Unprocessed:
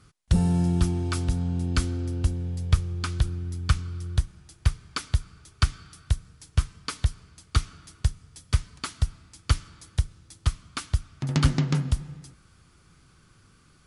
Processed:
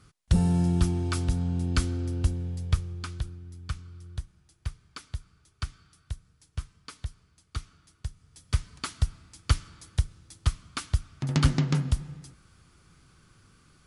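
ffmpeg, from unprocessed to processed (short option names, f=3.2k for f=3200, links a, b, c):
-af "volume=9.5dB,afade=t=out:st=2.26:d=1.13:silence=0.298538,afade=t=in:st=8.09:d=0.66:silence=0.298538"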